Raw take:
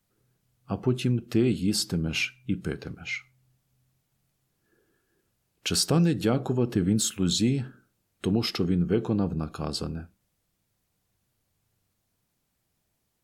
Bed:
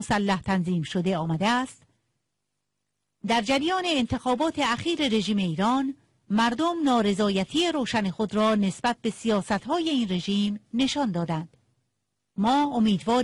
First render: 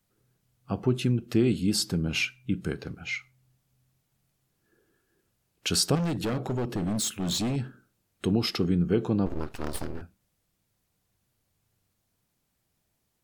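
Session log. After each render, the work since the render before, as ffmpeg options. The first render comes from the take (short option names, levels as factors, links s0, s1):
-filter_complex "[0:a]asettb=1/sr,asplit=3[s0][s1][s2];[s0]atrim=end=5.954[s3];[s1]atrim=start=5.95:end=7.56,asetpts=PTS-STARTPTS,afade=t=in:d=0.004:c=qsin,afade=t=out:st=1.606:d=0.004:c=qsin,asoftclip=type=hard:threshold=0.0531[s4];[s2]atrim=start=7.556[s5];[s3][s4]acrossfade=d=0.004:c1=hsin:c2=qsin[s6];[s6][s5]acrossfade=d=0.004:c1=qsin:c2=hsin,asettb=1/sr,asplit=3[s7][s8][s9];[s7]atrim=end=9.264[s10];[s8]atrim=start=9.26:end=10.02,asetpts=PTS-STARTPTS,afade=t=in:d=0.004:c=qsin,afade=t=out:st=0.756:d=0.004:c=qsin,aeval=exprs='abs(val(0))':c=same[s11];[s9]atrim=start=10.016[s12];[s10][s11]acrossfade=d=0.004:c1=hsin:c2=qsin[s13];[s13][s12]acrossfade=d=0.004:c1=qsin:c2=hsin"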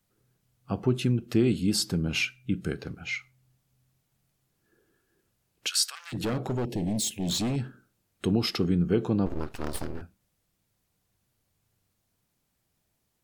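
-filter_complex "[0:a]asettb=1/sr,asplit=3[s0][s1][s2];[s0]atrim=end=2.234[s3];[s1]atrim=start=2.23:end=2.8,asetpts=PTS-STARTPTS,afade=t=in:d=0.004:c=qsin,afade=t=out:st=0.566:d=0.004:c=qsin,asuperstop=centerf=970:order=4:qfactor=3.2[s4];[s2]atrim=start=2.796[s5];[s3][s4]acrossfade=d=0.004:c1=hsin:c2=qsin[s6];[s6][s5]acrossfade=d=0.004:c1=qsin:c2=hsin,asplit=3[s7][s8][s9];[s7]afade=t=out:st=5.67:d=0.02[s10];[s8]highpass=f=1400:w=0.5412,highpass=f=1400:w=1.3066,afade=t=in:st=5.67:d=0.02,afade=t=out:st=6.12:d=0.02[s11];[s9]afade=t=in:st=6.12:d=0.02[s12];[s10][s11][s12]amix=inputs=3:normalize=0,asettb=1/sr,asplit=3[s13][s14][s15];[s13]atrim=end=6.654[s16];[s14]atrim=start=6.65:end=7.3,asetpts=PTS-STARTPTS,afade=t=in:d=0.004:c=qsin,afade=t=out:st=0.646:d=0.004:c=qsin,asuperstop=centerf=1300:order=4:qfactor=1.1[s17];[s15]atrim=start=7.296[s18];[s16][s17]acrossfade=d=0.004:c1=hsin:c2=qsin[s19];[s19][s18]acrossfade=d=0.004:c1=qsin:c2=hsin"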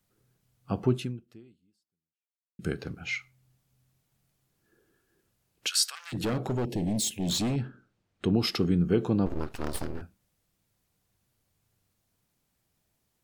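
-filter_complex "[0:a]asettb=1/sr,asplit=3[s0][s1][s2];[s0]atrim=end=7.544[s3];[s1]atrim=start=7.54:end=8.39,asetpts=PTS-STARTPTS,afade=t=in:d=0.004:c=qsin,afade=t=out:st=0.846:d=0.004:c=qsin,adynamicsmooth=sensitivity=1.5:basefreq=5000[s4];[s2]atrim=start=8.386[s5];[s3][s4]acrossfade=d=0.004:c1=hsin:c2=qsin[s6];[s6][s5]acrossfade=d=0.004:c1=qsin:c2=hsin,asplit=2[s7][s8];[s7]atrim=end=2.59,asetpts=PTS-STARTPTS,afade=t=out:st=0.93:d=1.66:c=exp[s9];[s8]atrim=start=2.59,asetpts=PTS-STARTPTS,afade=t=in:d=0.004:c=hsin[s10];[s9][s10]concat=n=2:v=0:a=1"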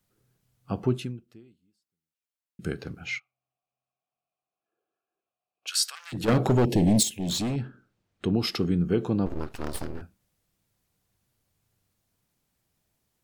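-filter_complex "[0:a]asplit=3[s0][s1][s2];[s0]afade=t=out:st=3.18:d=0.02[s3];[s1]asplit=3[s4][s5][s6];[s4]bandpass=f=730:t=q:w=8,volume=1[s7];[s5]bandpass=f=1090:t=q:w=8,volume=0.501[s8];[s6]bandpass=f=2440:t=q:w=8,volume=0.355[s9];[s7][s8][s9]amix=inputs=3:normalize=0,afade=t=in:st=3.18:d=0.02,afade=t=out:st=5.67:d=0.02[s10];[s2]afade=t=in:st=5.67:d=0.02[s11];[s3][s10][s11]amix=inputs=3:normalize=0,asplit=3[s12][s13][s14];[s12]atrim=end=6.282[s15];[s13]atrim=start=6.278:end=7.032,asetpts=PTS-STARTPTS,volume=2.66[s16];[s14]atrim=start=7.028[s17];[s15][s16]acrossfade=d=0.004:c1=hsin:c2=hsin[s18];[s18][s17]acrossfade=d=0.004:c1=hsin:c2=hsin"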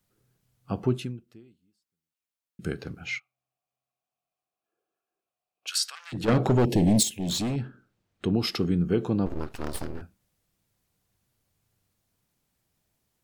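-filter_complex "[0:a]asettb=1/sr,asplit=3[s0][s1][s2];[s0]atrim=end=5.784[s3];[s1]atrim=start=5.78:end=6.6,asetpts=PTS-STARTPTS,afade=t=in:d=0.004:c=qsin,afade=t=out:st=0.816:d=0.004:c=qsin,highshelf=f=9200:g=-10.5[s4];[s2]atrim=start=6.596[s5];[s3][s4]acrossfade=d=0.004:c1=hsin:c2=qsin[s6];[s6][s5]acrossfade=d=0.004:c1=qsin:c2=hsin"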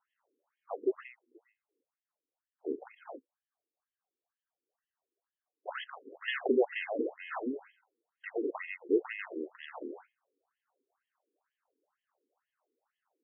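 -af "acrusher=samples=19:mix=1:aa=0.000001,afftfilt=real='re*between(b*sr/1024,340*pow(2400/340,0.5+0.5*sin(2*PI*2.1*pts/sr))/1.41,340*pow(2400/340,0.5+0.5*sin(2*PI*2.1*pts/sr))*1.41)':imag='im*between(b*sr/1024,340*pow(2400/340,0.5+0.5*sin(2*PI*2.1*pts/sr))/1.41,340*pow(2400/340,0.5+0.5*sin(2*PI*2.1*pts/sr))*1.41)':win_size=1024:overlap=0.75"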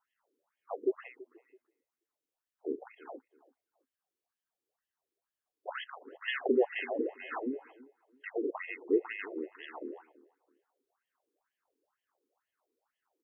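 -filter_complex "[0:a]asplit=2[s0][s1];[s1]adelay=331,lowpass=f=1200:p=1,volume=0.1,asplit=2[s2][s3];[s3]adelay=331,lowpass=f=1200:p=1,volume=0.27[s4];[s0][s2][s4]amix=inputs=3:normalize=0"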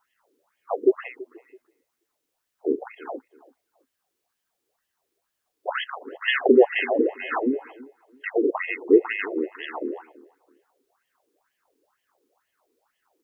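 -af "volume=3.98"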